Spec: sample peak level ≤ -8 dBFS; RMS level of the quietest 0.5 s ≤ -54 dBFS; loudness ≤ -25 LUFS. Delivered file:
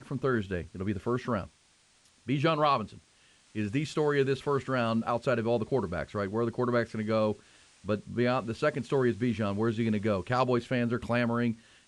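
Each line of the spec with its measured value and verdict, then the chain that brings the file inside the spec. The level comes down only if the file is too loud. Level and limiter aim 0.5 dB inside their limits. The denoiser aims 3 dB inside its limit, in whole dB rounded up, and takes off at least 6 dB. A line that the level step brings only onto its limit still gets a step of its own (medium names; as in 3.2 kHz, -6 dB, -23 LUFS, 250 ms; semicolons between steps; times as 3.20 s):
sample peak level -13.0 dBFS: pass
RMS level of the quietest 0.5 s -65 dBFS: pass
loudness -30.0 LUFS: pass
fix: none needed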